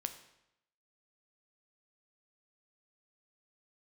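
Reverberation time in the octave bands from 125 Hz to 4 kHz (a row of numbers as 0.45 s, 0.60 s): 0.85 s, 0.85 s, 0.80 s, 0.85 s, 0.80 s, 0.75 s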